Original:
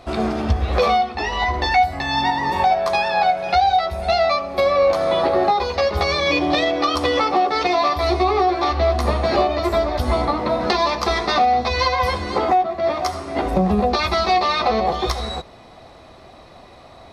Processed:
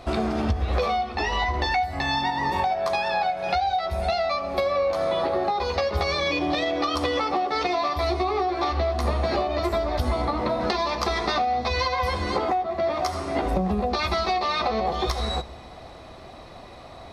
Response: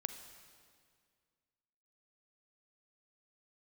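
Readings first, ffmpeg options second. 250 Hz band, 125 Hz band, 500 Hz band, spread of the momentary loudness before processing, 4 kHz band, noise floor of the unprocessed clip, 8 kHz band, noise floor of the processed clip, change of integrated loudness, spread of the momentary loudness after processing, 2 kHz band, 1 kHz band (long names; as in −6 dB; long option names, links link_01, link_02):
−5.0 dB, −3.5 dB, −6.0 dB, 4 LU, −5.5 dB, −44 dBFS, −4.5 dB, −43 dBFS, −6.0 dB, 4 LU, −5.5 dB, −6.5 dB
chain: -filter_complex "[0:a]acompressor=threshold=-22dB:ratio=6,asplit=2[link_01][link_02];[1:a]atrim=start_sample=2205,lowshelf=frequency=120:gain=8.5[link_03];[link_02][link_03]afir=irnorm=-1:irlink=0,volume=-8.5dB[link_04];[link_01][link_04]amix=inputs=2:normalize=0,volume=-2dB"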